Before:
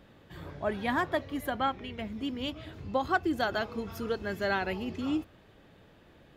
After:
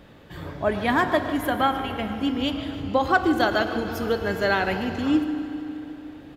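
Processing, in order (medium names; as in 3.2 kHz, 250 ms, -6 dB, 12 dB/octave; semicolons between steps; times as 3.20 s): speakerphone echo 110 ms, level -15 dB; FDN reverb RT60 3.3 s, high-frequency decay 0.7×, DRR 9 dB; modulated delay 152 ms, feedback 69%, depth 62 cents, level -16 dB; trim +7.5 dB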